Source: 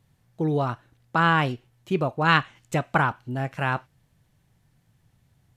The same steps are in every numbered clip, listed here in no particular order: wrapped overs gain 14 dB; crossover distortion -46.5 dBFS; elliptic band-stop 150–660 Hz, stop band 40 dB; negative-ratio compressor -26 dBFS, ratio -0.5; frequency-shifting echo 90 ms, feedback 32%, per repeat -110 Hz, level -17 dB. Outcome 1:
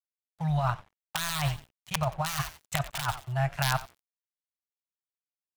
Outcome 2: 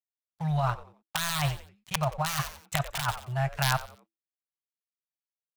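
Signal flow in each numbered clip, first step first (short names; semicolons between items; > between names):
wrapped overs > frequency-shifting echo > elliptic band-stop > negative-ratio compressor > crossover distortion; wrapped overs > elliptic band-stop > crossover distortion > frequency-shifting echo > negative-ratio compressor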